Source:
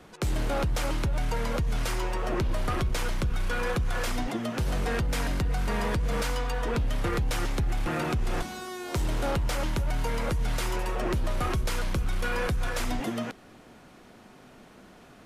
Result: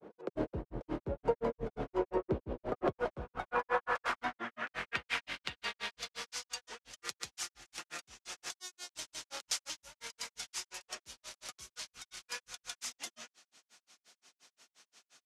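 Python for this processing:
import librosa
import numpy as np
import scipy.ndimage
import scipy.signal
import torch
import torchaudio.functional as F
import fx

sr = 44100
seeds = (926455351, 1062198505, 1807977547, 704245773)

y = fx.granulator(x, sr, seeds[0], grain_ms=124.0, per_s=5.7, spray_ms=100.0, spread_st=0)
y = fx.filter_sweep_bandpass(y, sr, from_hz=450.0, to_hz=6200.0, start_s=2.58, end_s=6.53, q=1.7)
y = y * librosa.db_to_amplitude(8.5)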